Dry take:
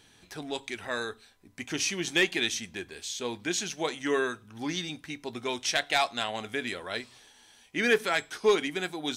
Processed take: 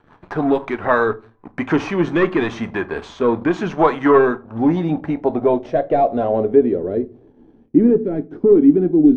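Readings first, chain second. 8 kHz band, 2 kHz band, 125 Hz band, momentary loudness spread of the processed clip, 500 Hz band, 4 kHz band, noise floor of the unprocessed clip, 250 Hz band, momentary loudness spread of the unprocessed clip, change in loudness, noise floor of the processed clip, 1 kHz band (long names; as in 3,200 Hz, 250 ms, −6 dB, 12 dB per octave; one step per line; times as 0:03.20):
below −15 dB, +3.0 dB, +18.0 dB, 11 LU, +15.0 dB, −9.0 dB, −59 dBFS, +19.5 dB, 13 LU, +12.5 dB, −52 dBFS, +13.0 dB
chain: high-shelf EQ 11,000 Hz +11.5 dB
mains-hum notches 60/120 Hz
rotating-speaker cabinet horn 6 Hz, later 0.85 Hz, at 0:00.35
in parallel at 0 dB: downward compressor, threshold −42 dBFS, peak gain reduction 21 dB
on the sum: leveller curve on the samples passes 3
low-pass filter sweep 1,100 Hz → 310 Hz, 0:03.99–0:07.52
rectangular room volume 170 cubic metres, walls furnished, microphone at 0.37 metres
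level +5 dB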